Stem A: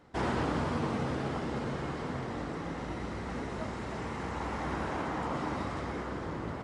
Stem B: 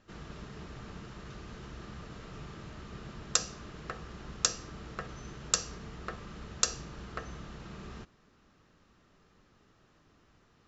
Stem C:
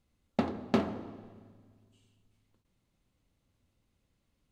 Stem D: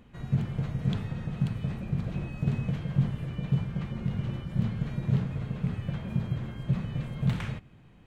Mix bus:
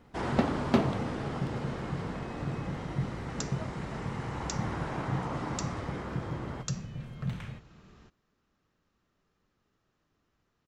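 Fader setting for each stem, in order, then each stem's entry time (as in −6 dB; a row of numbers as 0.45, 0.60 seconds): −2.0, −11.5, +2.0, −7.5 decibels; 0.00, 0.05, 0.00, 0.00 seconds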